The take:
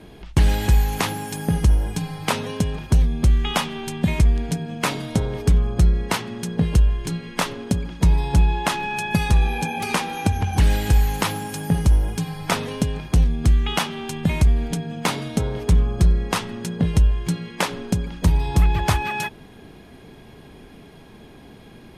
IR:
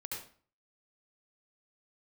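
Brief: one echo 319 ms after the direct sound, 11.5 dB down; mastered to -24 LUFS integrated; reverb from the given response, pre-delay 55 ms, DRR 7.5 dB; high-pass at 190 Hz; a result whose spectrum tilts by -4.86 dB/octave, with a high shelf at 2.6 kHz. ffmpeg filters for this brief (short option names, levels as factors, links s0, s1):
-filter_complex "[0:a]highpass=190,highshelf=f=2600:g=-4,aecho=1:1:319:0.266,asplit=2[s0][s1];[1:a]atrim=start_sample=2205,adelay=55[s2];[s1][s2]afir=irnorm=-1:irlink=0,volume=0.447[s3];[s0][s3]amix=inputs=2:normalize=0,volume=1.41"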